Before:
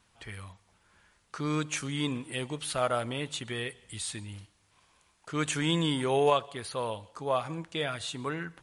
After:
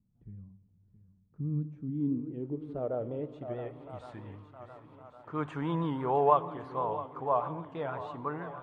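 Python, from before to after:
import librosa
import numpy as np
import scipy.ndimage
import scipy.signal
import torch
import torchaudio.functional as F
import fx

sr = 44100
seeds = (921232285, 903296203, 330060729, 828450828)

y = fx.high_shelf(x, sr, hz=2900.0, db=8.0)
y = fx.echo_swing(y, sr, ms=1112, ratio=1.5, feedback_pct=48, wet_db=-14.5)
y = fx.filter_sweep_lowpass(y, sr, from_hz=190.0, to_hz=970.0, start_s=1.51, end_s=4.13, q=2.6)
y = fx.vibrato(y, sr, rate_hz=6.2, depth_cents=65.0)
y = fx.room_shoebox(y, sr, seeds[0], volume_m3=3300.0, walls='mixed', distance_m=0.38)
y = y * 10.0 ** (-5.0 / 20.0)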